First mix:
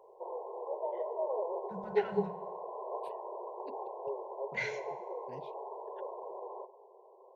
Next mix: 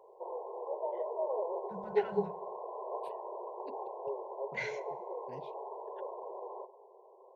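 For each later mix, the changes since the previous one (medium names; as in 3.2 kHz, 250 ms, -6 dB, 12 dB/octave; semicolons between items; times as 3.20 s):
first voice: send -11.0 dB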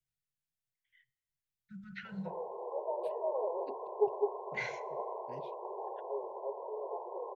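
background: entry +2.05 s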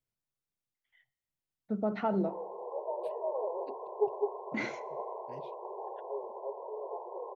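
first voice: remove Chebyshev band-stop 180–1500 Hz, order 5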